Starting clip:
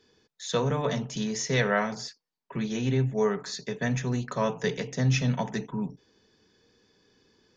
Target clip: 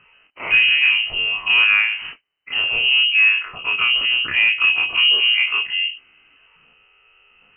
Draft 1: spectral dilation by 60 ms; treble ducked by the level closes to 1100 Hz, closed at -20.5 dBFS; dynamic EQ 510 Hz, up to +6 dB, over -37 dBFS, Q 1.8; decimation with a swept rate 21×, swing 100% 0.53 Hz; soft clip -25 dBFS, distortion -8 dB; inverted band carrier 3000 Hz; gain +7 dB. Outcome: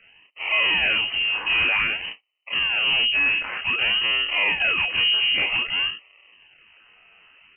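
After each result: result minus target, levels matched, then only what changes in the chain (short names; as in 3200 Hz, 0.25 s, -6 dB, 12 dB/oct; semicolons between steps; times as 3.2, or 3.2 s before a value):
soft clip: distortion +12 dB; decimation with a swept rate: distortion +10 dB
change: soft clip -13.5 dBFS, distortion -20 dB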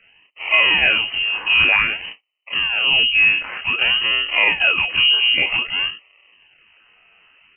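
decimation with a swept rate: distortion +10 dB
change: decimation with a swept rate 7×, swing 100% 0.53 Hz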